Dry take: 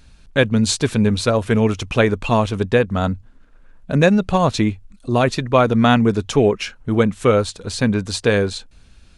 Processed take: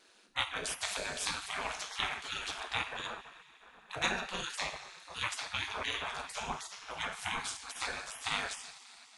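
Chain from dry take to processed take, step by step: two-slope reverb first 0.46 s, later 3.4 s, from -18 dB, DRR 2 dB; ring modulator 100 Hz; spectral gate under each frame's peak -20 dB weak; gain -3.5 dB

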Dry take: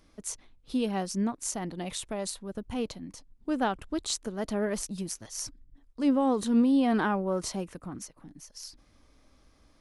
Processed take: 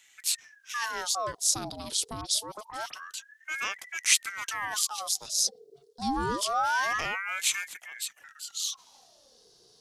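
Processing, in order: resonant high shelf 3200 Hz +12 dB, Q 3; transient shaper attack -3 dB, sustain +3 dB; 2.21–2.94 dispersion highs, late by 50 ms, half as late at 2900 Hz; ring modulator with a swept carrier 1200 Hz, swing 65%, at 0.26 Hz; gain -1.5 dB

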